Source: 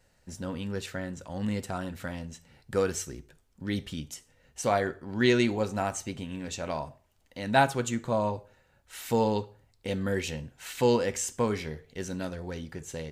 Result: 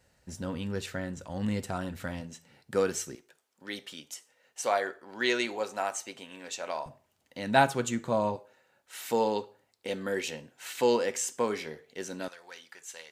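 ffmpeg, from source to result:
-af "asetnsamples=n=441:p=0,asendcmd='2.21 highpass f 160;3.15 highpass f 500;6.86 highpass f 130;8.36 highpass f 290;12.28 highpass f 1100',highpass=42"

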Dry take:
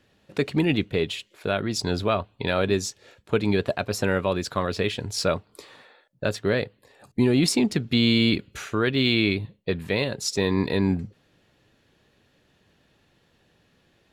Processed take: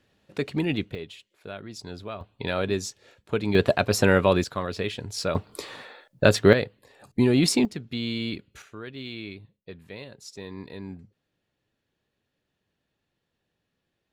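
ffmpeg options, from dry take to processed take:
-af "asetnsamples=n=441:p=0,asendcmd='0.95 volume volume -13dB;2.21 volume volume -3.5dB;3.55 volume volume 4.5dB;4.44 volume volume -4dB;5.35 volume volume 8dB;6.53 volume volume 0dB;7.65 volume volume -10dB;8.62 volume volume -16dB',volume=-4dB"

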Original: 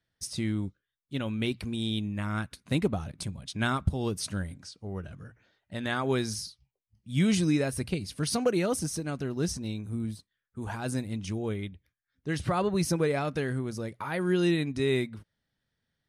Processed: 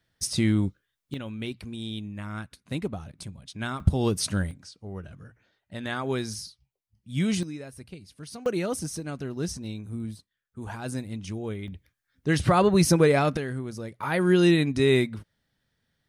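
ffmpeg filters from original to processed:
-af "asetnsamples=n=441:p=0,asendcmd='1.14 volume volume -4dB;3.8 volume volume 6dB;4.51 volume volume -1dB;7.43 volume volume -12dB;8.46 volume volume -1dB;11.68 volume volume 7.5dB;13.37 volume volume -1dB;14.03 volume volume 6dB',volume=7.5dB"

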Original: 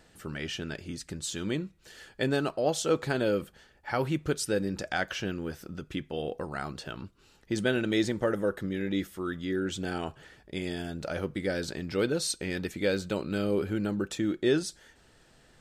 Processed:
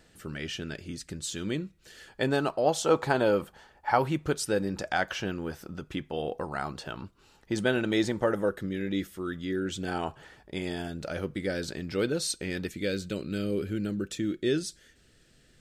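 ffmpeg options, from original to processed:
-af "asetnsamples=n=441:p=0,asendcmd='2.08 equalizer g 6;2.83 equalizer g 12;3.99 equalizer g 5.5;8.49 equalizer g -4.5;9.88 equalizer g 6;10.88 equalizer g -3;12.69 equalizer g -15',equalizer=f=890:t=o:w=0.94:g=-4"

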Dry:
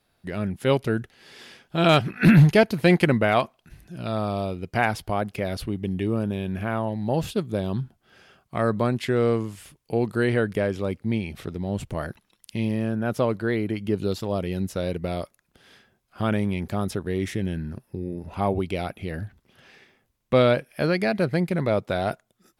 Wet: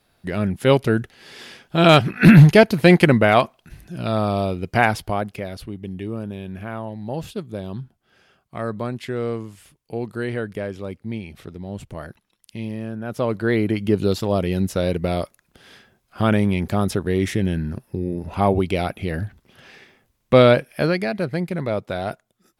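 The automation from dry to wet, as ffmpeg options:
-af "volume=15.5dB,afade=t=out:st=4.83:d=0.68:silence=0.334965,afade=t=in:st=13.08:d=0.51:silence=0.316228,afade=t=out:st=20.66:d=0.41:silence=0.446684"

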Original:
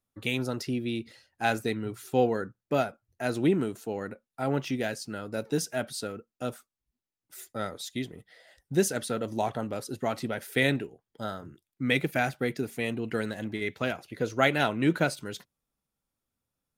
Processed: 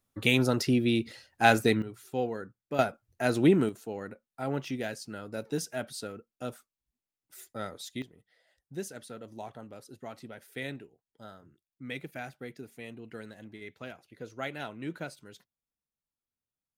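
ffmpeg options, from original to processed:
-af "asetnsamples=n=441:p=0,asendcmd='1.82 volume volume -7dB;2.79 volume volume 2.5dB;3.69 volume volume -4dB;8.02 volume volume -13dB',volume=5.5dB"

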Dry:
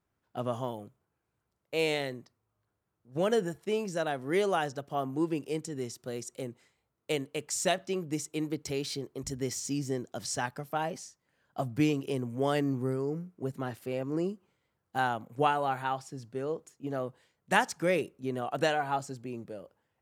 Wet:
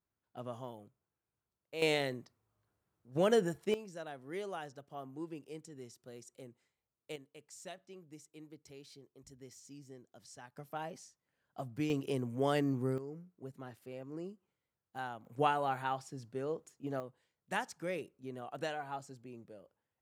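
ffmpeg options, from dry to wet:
-af "asetnsamples=n=441:p=0,asendcmd='1.82 volume volume -1dB;3.74 volume volume -13.5dB;7.16 volume volume -20dB;10.57 volume volume -9.5dB;11.9 volume volume -3dB;12.98 volume volume -12.5dB;15.25 volume volume -4dB;17 volume volume -11dB',volume=-10.5dB"

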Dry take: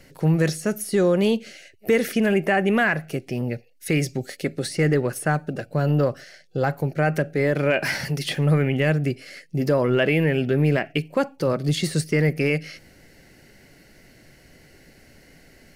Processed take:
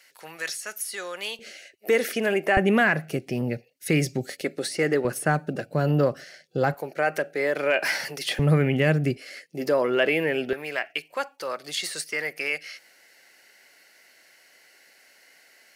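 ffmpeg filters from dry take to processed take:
-af "asetnsamples=n=441:p=0,asendcmd='1.39 highpass f 370;2.57 highpass f 110;4.41 highpass f 310;5.05 highpass f 140;6.74 highpass f 470;8.39 highpass f 110;9.17 highpass f 370;10.53 highpass f 870',highpass=1.3k"

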